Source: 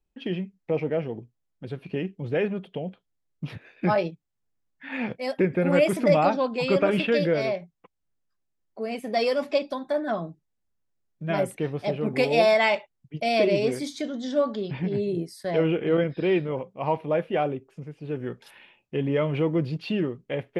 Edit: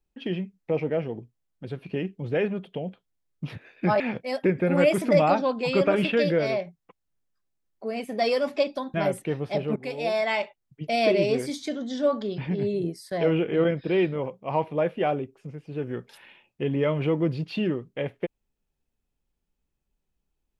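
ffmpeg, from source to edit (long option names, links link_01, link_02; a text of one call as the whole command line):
ffmpeg -i in.wav -filter_complex "[0:a]asplit=4[link_01][link_02][link_03][link_04];[link_01]atrim=end=4.002[link_05];[link_02]atrim=start=4.948:end=9.892[link_06];[link_03]atrim=start=11.268:end=12.09,asetpts=PTS-STARTPTS,afade=type=out:start_time=0.818:duration=0.004:curve=hsin:silence=0.211349[link_07];[link_04]atrim=start=12.09,asetpts=PTS-STARTPTS,afade=type=in:duration=1.16:silence=0.211349[link_08];[link_05][link_06]acrossfade=duration=0.004:curve1=hsin:curve2=hsin[link_09];[link_07][link_08]concat=n=2:v=0:a=1[link_10];[link_09][link_10]acrossfade=duration=0.004:curve1=hsin:curve2=hsin" out.wav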